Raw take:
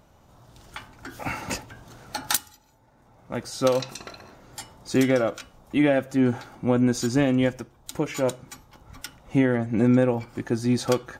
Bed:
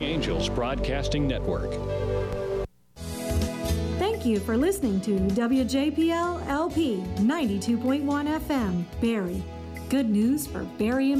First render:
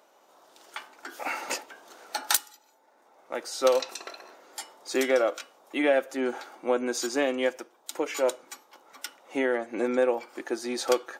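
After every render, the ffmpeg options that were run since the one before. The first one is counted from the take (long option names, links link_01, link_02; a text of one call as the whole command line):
ffmpeg -i in.wav -af "highpass=frequency=360:width=0.5412,highpass=frequency=360:width=1.3066" out.wav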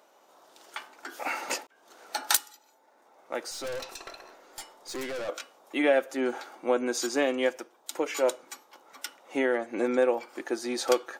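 ffmpeg -i in.wav -filter_complex "[0:a]asettb=1/sr,asplit=3[link_01][link_02][link_03];[link_01]atrim=end=3.514[link_04];[link_02]atrim=start=3.51:end=5.29,asetpts=PTS-STARTPTS,afade=type=in:duration=0.004:curve=qsin,afade=type=out:start_time=1.776:duration=0.004:curve=qsin,aeval=exprs='(tanh(44.7*val(0)+0.35)-tanh(0.35))/44.7':channel_layout=same[link_05];[link_03]atrim=start=5.286[link_06];[link_04][link_05]acrossfade=duration=0.004:curve1=hsin:curve2=qsin[link_07];[link_07][link_06]acrossfade=duration=0.004:curve1=qsin:curve2=hsin,asplit=2[link_08][link_09];[link_08]atrim=end=1.67,asetpts=PTS-STARTPTS,afade=type=out:start_time=1.666:duration=0.004:curve=hsin[link_10];[link_09]atrim=start=1.67,asetpts=PTS-STARTPTS,afade=type=in:duration=0.6:curve=qsin[link_11];[link_10][link_11]concat=n=2:v=0:a=1" out.wav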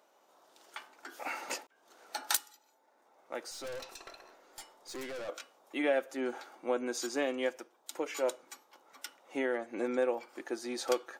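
ffmpeg -i in.wav -af "volume=-6.5dB" out.wav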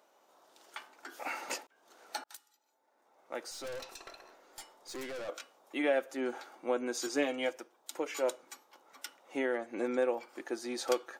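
ffmpeg -i in.wav -filter_complex "[0:a]asettb=1/sr,asplit=3[link_01][link_02][link_03];[link_01]atrim=end=7.064[link_04];[link_02]atrim=start=7.06:end=7.53,asetpts=PTS-STARTPTS,afade=type=in:duration=0.004:curve=qsin,afade=type=out:start_time=0.466:duration=0.004:curve=qsin,aecho=1:1:6.5:0.65,atrim=end_sample=20727[link_05];[link_03]atrim=start=7.526[link_06];[link_04][link_05]acrossfade=duration=0.004:curve1=hsin:curve2=qsin[link_07];[link_07][link_06]acrossfade=duration=0.004:curve1=qsin:curve2=hsin,asplit=2[link_08][link_09];[link_08]atrim=end=2.24,asetpts=PTS-STARTPTS,afade=type=out:start_time=2.236:duration=0.004:curve=hsin[link_10];[link_09]atrim=start=2.24,asetpts=PTS-STARTPTS,afade=type=in:duration=1.13[link_11];[link_10][link_11]concat=n=2:v=0:a=1" out.wav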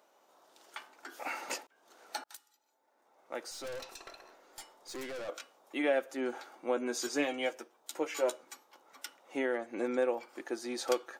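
ffmpeg -i in.wav -filter_complex "[0:a]asettb=1/sr,asplit=3[link_01][link_02][link_03];[link_01]atrim=end=6.764[link_04];[link_02]atrim=start=6.76:end=8.44,asetpts=PTS-STARTPTS,afade=type=in:duration=0.004:curve=qsin,afade=type=out:start_time=1.676:duration=0.004:curve=qsin,asplit=2[link_05][link_06];[link_06]adelay=13,volume=-6.5dB[link_07];[link_05][link_07]amix=inputs=2:normalize=0,atrim=end_sample=74088[link_08];[link_03]atrim=start=8.436[link_09];[link_04][link_08]acrossfade=duration=0.004:curve1=hsin:curve2=qsin[link_10];[link_10][link_09]acrossfade=duration=0.004:curve1=qsin:curve2=hsin" out.wav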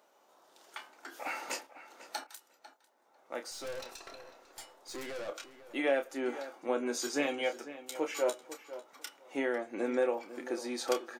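ffmpeg -i in.wav -filter_complex "[0:a]asplit=2[link_01][link_02];[link_02]adelay=29,volume=-9dB[link_03];[link_01][link_03]amix=inputs=2:normalize=0,asplit=2[link_04][link_05];[link_05]adelay=498,lowpass=frequency=3200:poles=1,volume=-14dB,asplit=2[link_06][link_07];[link_07]adelay=498,lowpass=frequency=3200:poles=1,volume=0.17[link_08];[link_04][link_06][link_08]amix=inputs=3:normalize=0" out.wav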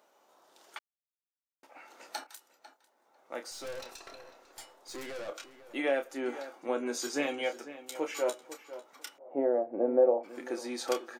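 ffmpeg -i in.wav -filter_complex "[0:a]asplit=3[link_01][link_02][link_03];[link_01]afade=type=out:start_time=9.17:duration=0.02[link_04];[link_02]lowpass=frequency=640:width_type=q:width=3.1,afade=type=in:start_time=9.17:duration=0.02,afade=type=out:start_time=10.23:duration=0.02[link_05];[link_03]afade=type=in:start_time=10.23:duration=0.02[link_06];[link_04][link_05][link_06]amix=inputs=3:normalize=0,asplit=3[link_07][link_08][link_09];[link_07]atrim=end=0.79,asetpts=PTS-STARTPTS,afade=type=out:start_time=0.786:duration=0.004:curve=hsin[link_10];[link_08]atrim=start=0.79:end=1.63,asetpts=PTS-STARTPTS,volume=0[link_11];[link_09]atrim=start=1.63,asetpts=PTS-STARTPTS,afade=type=in:duration=0.004:curve=hsin[link_12];[link_10][link_11][link_12]concat=n=3:v=0:a=1" out.wav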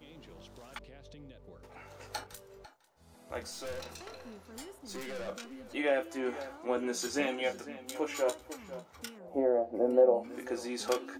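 ffmpeg -i in.wav -i bed.wav -filter_complex "[1:a]volume=-26dB[link_01];[0:a][link_01]amix=inputs=2:normalize=0" out.wav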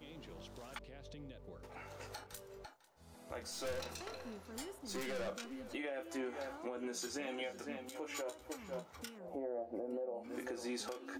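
ffmpeg -i in.wav -af "acompressor=threshold=-32dB:ratio=6,alimiter=level_in=8.5dB:limit=-24dB:level=0:latency=1:release=253,volume=-8.5dB" out.wav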